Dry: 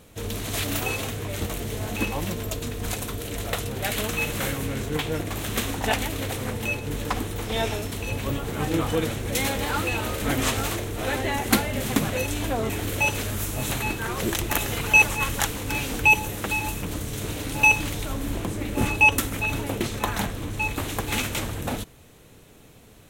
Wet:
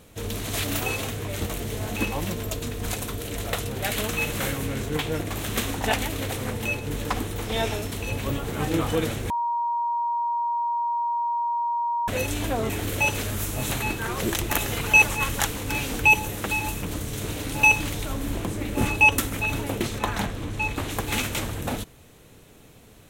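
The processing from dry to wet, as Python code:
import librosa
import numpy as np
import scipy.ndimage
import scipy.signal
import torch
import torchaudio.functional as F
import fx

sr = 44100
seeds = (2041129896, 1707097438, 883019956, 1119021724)

y = fx.high_shelf(x, sr, hz=9500.0, db=-9.0, at=(19.98, 20.91))
y = fx.edit(y, sr, fx.bleep(start_s=9.3, length_s=2.78, hz=945.0, db=-22.5), tone=tone)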